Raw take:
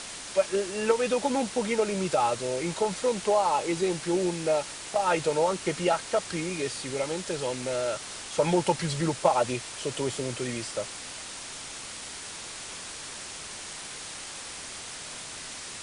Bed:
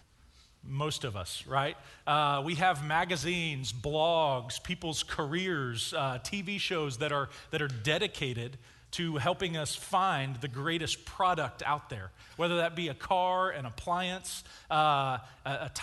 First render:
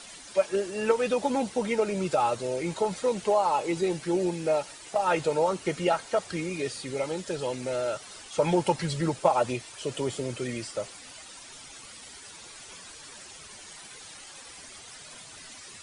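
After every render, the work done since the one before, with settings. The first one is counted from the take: noise reduction 11 dB, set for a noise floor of -40 dBFS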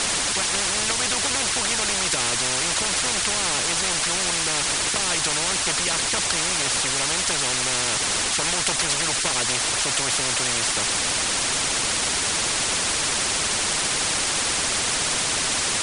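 spectrum-flattening compressor 10:1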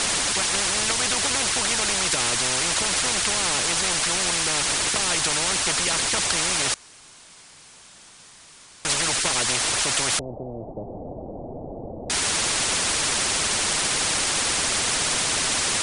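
6.74–8.85 s: room tone; 10.19–12.10 s: steep low-pass 730 Hz 48 dB/octave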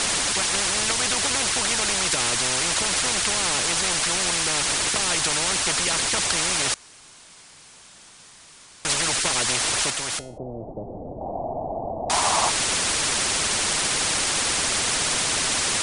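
9.90–10.38 s: feedback comb 160 Hz, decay 0.48 s, mix 50%; 11.21–12.50 s: high-order bell 860 Hz +12.5 dB 1.1 oct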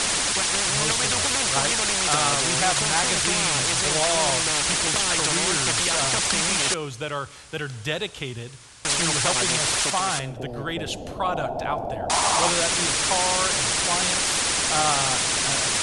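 add bed +2 dB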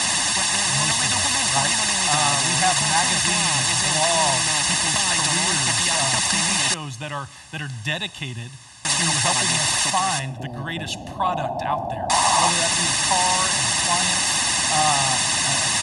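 high-pass 87 Hz 12 dB/octave; comb 1.1 ms, depth 86%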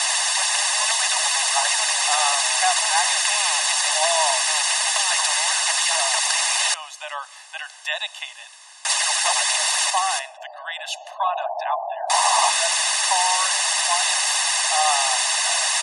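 steep high-pass 590 Hz 96 dB/octave; spectral gate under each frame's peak -30 dB strong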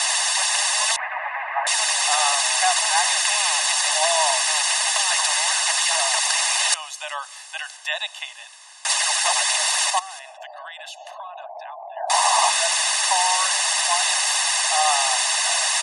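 0.96–1.67 s: Chebyshev band-pass 560–2300 Hz, order 4; 6.72–7.77 s: treble shelf 3.6 kHz +6 dB; 9.99–11.97 s: compression 12:1, threshold -32 dBFS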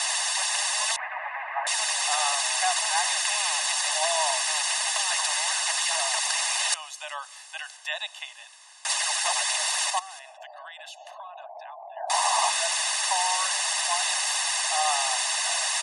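trim -5.5 dB

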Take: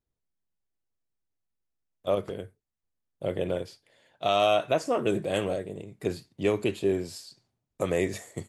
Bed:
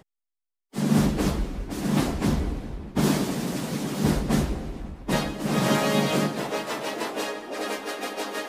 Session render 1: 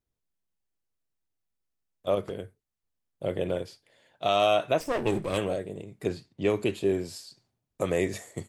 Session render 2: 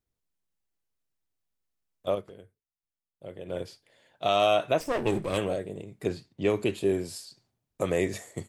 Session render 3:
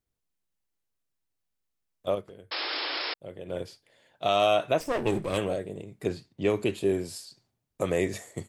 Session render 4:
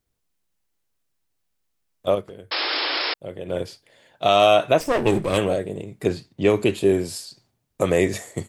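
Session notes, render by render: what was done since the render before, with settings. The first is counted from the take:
4.80–5.38 s: comb filter that takes the minimum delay 0.36 ms; 6.09–6.50 s: distance through air 58 m
2.08–3.62 s: dip -12 dB, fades 0.16 s; 6.78–7.25 s: peaking EQ 9.8 kHz +7 dB 0.44 oct
2.51–3.14 s: painted sound noise 270–5400 Hz -32 dBFS
trim +7.5 dB

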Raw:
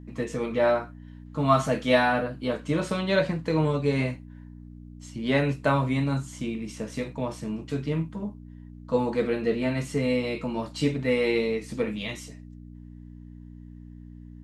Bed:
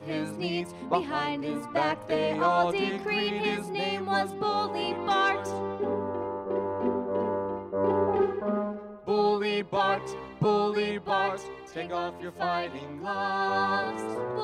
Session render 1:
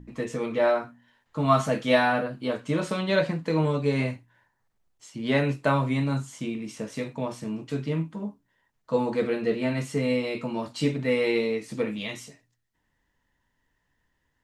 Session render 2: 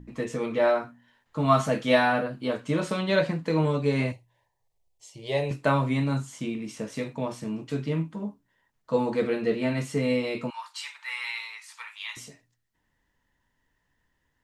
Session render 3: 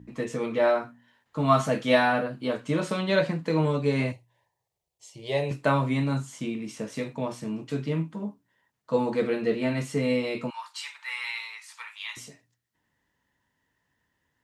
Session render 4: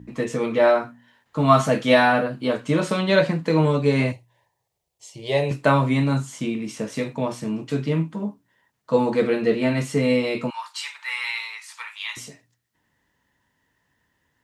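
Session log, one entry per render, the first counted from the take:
de-hum 60 Hz, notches 5
4.12–5.51 s: static phaser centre 590 Hz, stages 4; 10.50–12.17 s: Chebyshev high-pass 900 Hz, order 5
high-pass 80 Hz
trim +5.5 dB; peak limiter -3 dBFS, peak gain reduction 2 dB

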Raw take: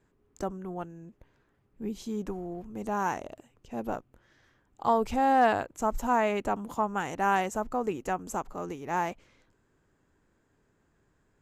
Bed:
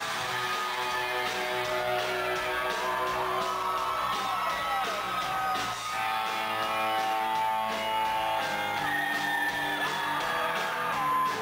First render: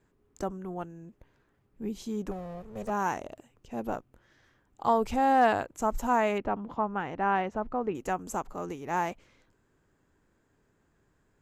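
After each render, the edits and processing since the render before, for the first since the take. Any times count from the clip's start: 2.31–2.90 s: comb filter that takes the minimum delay 1.6 ms; 6.38–7.95 s: distance through air 290 m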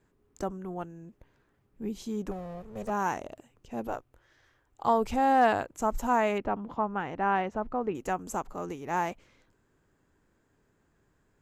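3.87–4.85 s: peaking EQ 200 Hz -13.5 dB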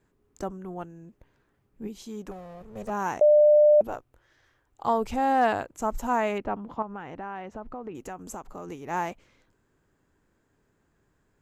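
1.87–2.61 s: bass shelf 450 Hz -6 dB; 3.21–3.81 s: bleep 598 Hz -13.5 dBFS; 6.82–8.72 s: compression 4:1, threshold -34 dBFS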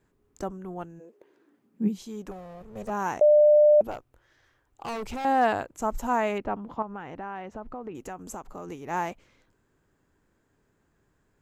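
0.99–1.97 s: resonant high-pass 510 Hz -> 170 Hz, resonance Q 5.5; 3.91–5.25 s: hard clipper -31 dBFS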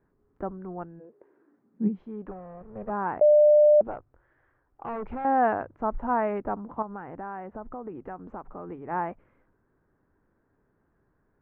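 low-pass 1.7 kHz 24 dB/octave; hum notches 50/100/150 Hz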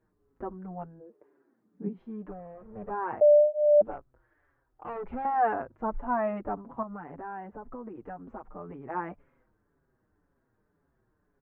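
wow and flutter 19 cents; endless flanger 5.9 ms -1.9 Hz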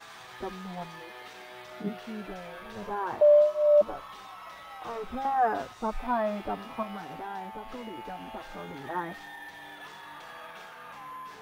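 add bed -15.5 dB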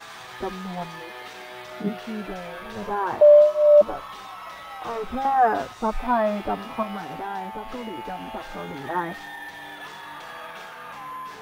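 trim +6.5 dB

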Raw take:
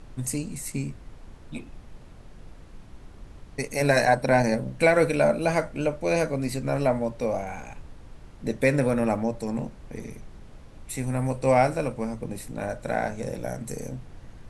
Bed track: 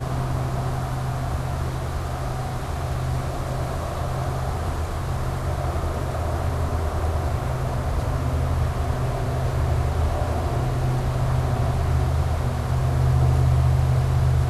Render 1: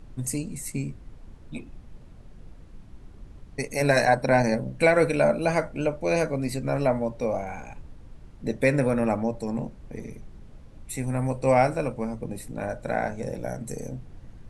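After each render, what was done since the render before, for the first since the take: noise reduction 6 dB, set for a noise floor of -47 dBFS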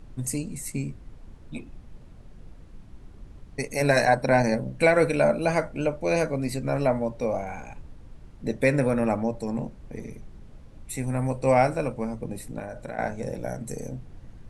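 12.59–12.99 s: compression, threshold -31 dBFS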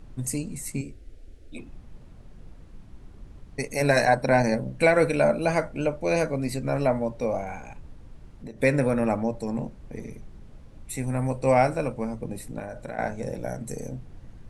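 0.81–1.58 s: static phaser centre 410 Hz, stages 4; 7.57–8.60 s: compression, threshold -35 dBFS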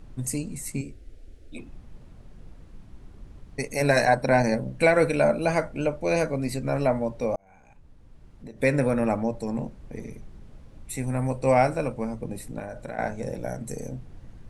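7.36–8.80 s: fade in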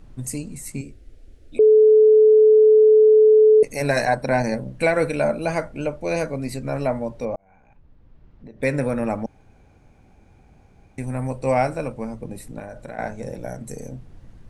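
1.59–3.63 s: bleep 432 Hz -9 dBFS; 7.25–8.63 s: distance through air 200 m; 9.26–10.98 s: room tone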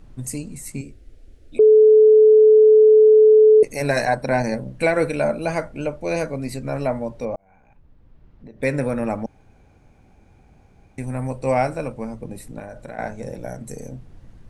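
dynamic bell 360 Hz, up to +5 dB, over -29 dBFS, Q 4.4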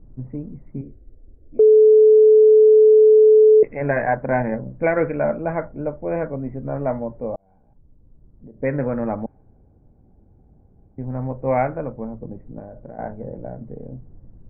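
level-controlled noise filter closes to 480 Hz, open at -10 dBFS; steep low-pass 2.2 kHz 48 dB/octave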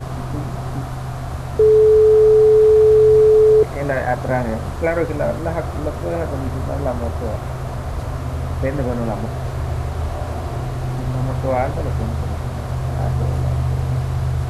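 add bed track -1 dB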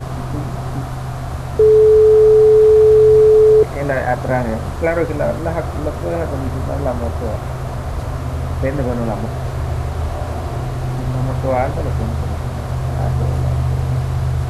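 trim +2 dB

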